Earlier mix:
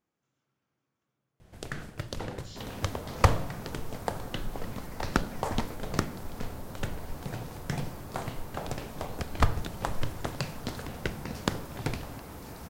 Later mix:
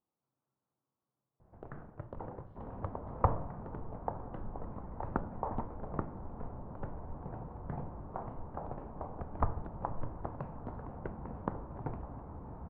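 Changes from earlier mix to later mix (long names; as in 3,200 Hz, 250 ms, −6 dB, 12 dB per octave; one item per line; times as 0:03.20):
second sound: add low-shelf EQ 190 Hz +10.5 dB
master: add transistor ladder low-pass 1,200 Hz, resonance 40%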